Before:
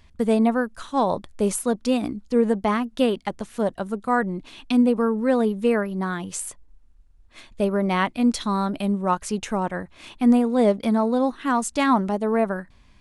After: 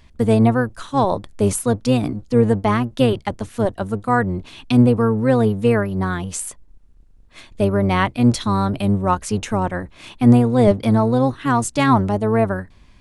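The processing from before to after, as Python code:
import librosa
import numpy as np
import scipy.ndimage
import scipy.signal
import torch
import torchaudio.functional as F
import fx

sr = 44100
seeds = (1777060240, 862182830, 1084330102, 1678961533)

y = fx.octave_divider(x, sr, octaves=1, level_db=-2.0)
y = y * 10.0 ** (3.5 / 20.0)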